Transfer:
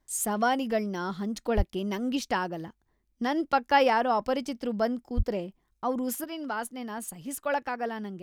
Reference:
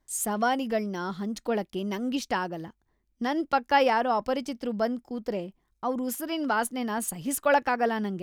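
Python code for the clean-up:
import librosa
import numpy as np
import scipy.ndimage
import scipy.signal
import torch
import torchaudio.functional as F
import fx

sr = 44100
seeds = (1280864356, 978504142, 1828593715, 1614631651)

y = fx.highpass(x, sr, hz=140.0, slope=24, at=(1.56, 1.68), fade=0.02)
y = fx.highpass(y, sr, hz=140.0, slope=24, at=(5.16, 5.28), fade=0.02)
y = fx.gain(y, sr, db=fx.steps((0.0, 0.0), (6.24, 6.5)))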